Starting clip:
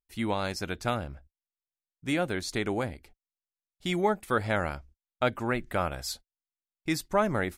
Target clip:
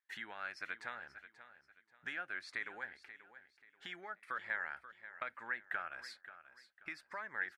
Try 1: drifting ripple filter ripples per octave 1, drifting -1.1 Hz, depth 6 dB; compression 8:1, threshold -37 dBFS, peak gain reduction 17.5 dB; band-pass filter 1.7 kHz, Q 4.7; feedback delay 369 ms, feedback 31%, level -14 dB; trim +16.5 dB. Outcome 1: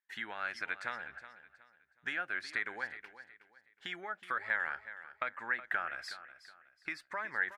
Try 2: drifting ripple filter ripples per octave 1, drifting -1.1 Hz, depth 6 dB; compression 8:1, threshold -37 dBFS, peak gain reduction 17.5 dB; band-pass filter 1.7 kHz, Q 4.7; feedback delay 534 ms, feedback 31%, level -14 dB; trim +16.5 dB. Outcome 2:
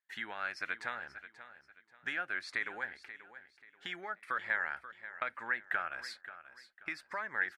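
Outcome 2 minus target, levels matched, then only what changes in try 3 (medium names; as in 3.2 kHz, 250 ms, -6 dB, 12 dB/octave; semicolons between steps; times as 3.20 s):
compression: peak gain reduction -5.5 dB
change: compression 8:1, threshold -43.5 dBFS, peak gain reduction 23.5 dB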